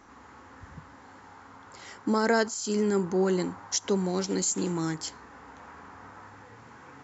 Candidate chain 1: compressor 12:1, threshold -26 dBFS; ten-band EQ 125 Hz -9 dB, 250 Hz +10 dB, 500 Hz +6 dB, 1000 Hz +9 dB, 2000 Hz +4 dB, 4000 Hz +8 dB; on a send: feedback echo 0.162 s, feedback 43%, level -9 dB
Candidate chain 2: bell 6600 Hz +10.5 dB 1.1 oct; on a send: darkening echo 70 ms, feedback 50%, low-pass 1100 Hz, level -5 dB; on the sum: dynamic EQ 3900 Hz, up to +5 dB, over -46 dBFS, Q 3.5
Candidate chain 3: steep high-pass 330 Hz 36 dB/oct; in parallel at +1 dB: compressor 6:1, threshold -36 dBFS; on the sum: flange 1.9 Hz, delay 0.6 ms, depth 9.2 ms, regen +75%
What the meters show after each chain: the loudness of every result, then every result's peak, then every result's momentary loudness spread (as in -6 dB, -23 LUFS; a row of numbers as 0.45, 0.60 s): -24.0, -23.5, -31.5 LUFS; -8.0, -5.5, -15.0 dBFS; 18, 11, 19 LU